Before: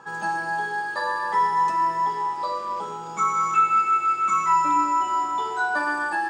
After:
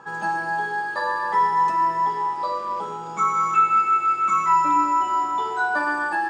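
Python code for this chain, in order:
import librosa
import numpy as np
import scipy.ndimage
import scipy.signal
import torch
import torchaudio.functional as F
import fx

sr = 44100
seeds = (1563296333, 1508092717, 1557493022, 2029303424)

y = fx.high_shelf(x, sr, hz=4000.0, db=-6.5)
y = y * 10.0 ** (2.0 / 20.0)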